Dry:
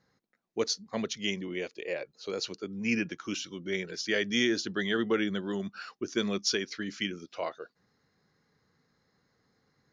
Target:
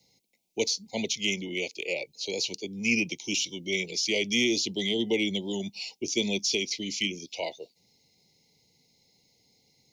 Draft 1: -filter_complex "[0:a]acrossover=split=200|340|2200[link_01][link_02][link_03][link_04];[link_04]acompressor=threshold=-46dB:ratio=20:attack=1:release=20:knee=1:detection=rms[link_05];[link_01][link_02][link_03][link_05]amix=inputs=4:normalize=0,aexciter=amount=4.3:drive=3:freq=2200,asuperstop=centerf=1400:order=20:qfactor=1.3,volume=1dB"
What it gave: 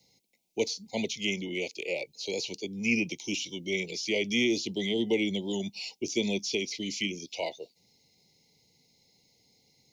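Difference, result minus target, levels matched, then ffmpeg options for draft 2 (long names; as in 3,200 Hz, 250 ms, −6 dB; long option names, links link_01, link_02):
downward compressor: peak gain reduction +8 dB
-filter_complex "[0:a]acrossover=split=200|340|2200[link_01][link_02][link_03][link_04];[link_04]acompressor=threshold=-37.5dB:ratio=20:attack=1:release=20:knee=1:detection=rms[link_05];[link_01][link_02][link_03][link_05]amix=inputs=4:normalize=0,aexciter=amount=4.3:drive=3:freq=2200,asuperstop=centerf=1400:order=20:qfactor=1.3,volume=1dB"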